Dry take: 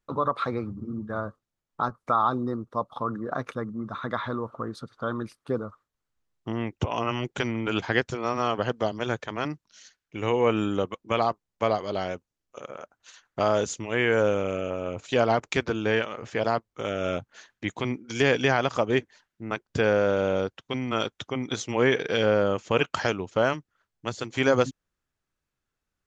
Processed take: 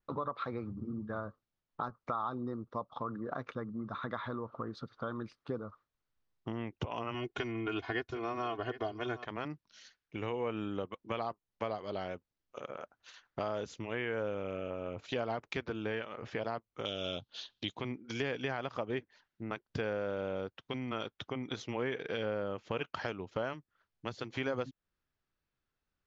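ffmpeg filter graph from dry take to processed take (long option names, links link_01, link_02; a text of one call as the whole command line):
ffmpeg -i in.wav -filter_complex "[0:a]asettb=1/sr,asplit=3[link_01][link_02][link_03];[link_01]atrim=end=7.144[link_04];[link_02]atrim=start=7.14:end=9.25,asetpts=PTS-STARTPTS,afade=type=in:duration=0.004:curve=qsin,afade=type=out:start_time=2.106:duration=0.004:curve=qsin,aecho=1:1:2.8:0.84,atrim=end_sample=93051,aecho=1:1:761:0.133,atrim=end_sample=93051[link_05];[link_03]atrim=start=9.246[link_06];[link_04][link_05]acrossfade=duration=0.004:curve1=hsin:curve2=qsin[link_07];[link_07][link_06]acrossfade=duration=0.004:curve1=qsin:curve2=hsin,asettb=1/sr,asplit=3[link_08][link_09][link_10];[link_08]atrim=end=16.854[link_11];[link_09]atrim=start=16.85:end=17.75,asetpts=PTS-STARTPTS,afade=type=in:duration=0.004:curve=qsin,afade=type=out:start_time=0.896:duration=0.004:curve=qsin,lowpass=6900,highshelf=frequency=2600:width_type=q:width=3:gain=10.5[link_12];[link_10]atrim=start=17.746[link_13];[link_11][link_12]acrossfade=duration=0.004:curve1=hsin:curve2=qsin[link_14];[link_14][link_13]acrossfade=duration=0.004:curve1=qsin:curve2=hsin,lowpass=frequency=5300:width=0.5412,lowpass=frequency=5300:width=1.3066,acompressor=threshold=-34dB:ratio=2.5,adynamicequalizer=threshold=0.00251:dfrequency=4200:dqfactor=0.7:tfrequency=4200:tqfactor=0.7:attack=5:release=100:ratio=0.375:range=3:mode=cutabove:tftype=highshelf,volume=-3dB" out.wav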